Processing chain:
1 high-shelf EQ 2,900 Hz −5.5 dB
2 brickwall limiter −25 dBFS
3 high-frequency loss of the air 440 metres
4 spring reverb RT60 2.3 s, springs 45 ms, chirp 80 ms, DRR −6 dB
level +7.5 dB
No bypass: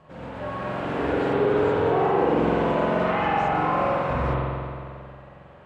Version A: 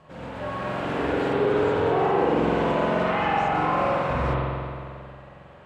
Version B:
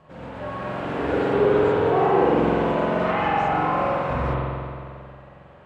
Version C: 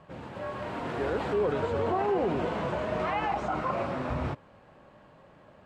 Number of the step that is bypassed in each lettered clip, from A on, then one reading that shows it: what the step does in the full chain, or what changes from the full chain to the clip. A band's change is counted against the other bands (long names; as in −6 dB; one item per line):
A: 1, 4 kHz band +3.0 dB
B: 2, change in momentary loudness spread +2 LU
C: 4, change in momentary loudness spread −4 LU